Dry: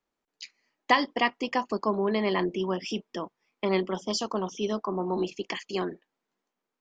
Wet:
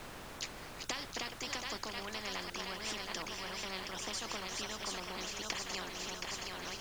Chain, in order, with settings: reverse delay 0.625 s, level -13 dB; thinning echo 0.722 s, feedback 46%, level -7.5 dB; tremolo triangle 3.5 Hz, depth 70%; compressor 4:1, threshold -31 dBFS, peak gain reduction 13 dB; added noise brown -50 dBFS; spectral compressor 4:1; gain -1.5 dB

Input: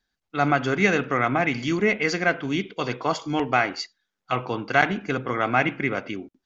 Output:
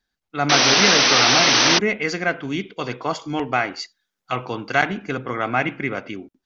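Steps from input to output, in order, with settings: 0.49–1.79 painted sound noise 210–6200 Hz -16 dBFS; 3.81–4.81 high shelf 5700 Hz -> 4200 Hz +7 dB

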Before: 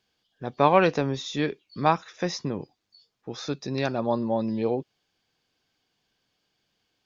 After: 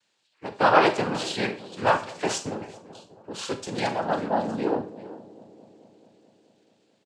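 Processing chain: low shelf 260 Hz -11.5 dB; speakerphone echo 0.39 s, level -15 dB; noise vocoder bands 8; on a send: dark delay 0.217 s, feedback 73%, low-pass 640 Hz, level -18 dB; on the sum: Schroeder reverb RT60 0.36 s, combs from 28 ms, DRR 9 dB; gain +3 dB

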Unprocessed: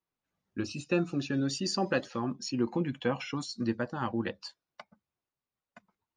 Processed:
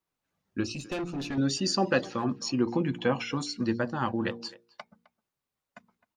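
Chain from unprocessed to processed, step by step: de-hum 58.45 Hz, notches 8; 0.74–1.38 tube stage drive 33 dB, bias 0.4; speakerphone echo 0.26 s, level -19 dB; gain +4 dB

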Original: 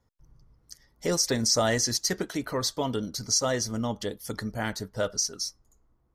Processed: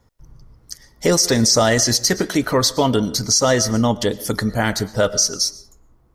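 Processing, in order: on a send at -18 dB: reverb RT60 0.65 s, pre-delay 80 ms; on the sum: maximiser +17.5 dB; gain -5 dB

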